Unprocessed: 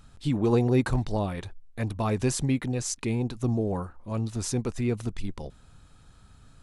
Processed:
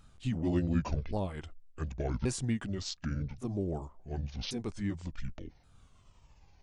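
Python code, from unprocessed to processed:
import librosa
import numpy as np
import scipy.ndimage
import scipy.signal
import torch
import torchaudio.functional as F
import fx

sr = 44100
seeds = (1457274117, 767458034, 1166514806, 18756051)

y = fx.pitch_ramps(x, sr, semitones=-10.5, every_ms=1127)
y = F.gain(torch.from_numpy(y), -5.5).numpy()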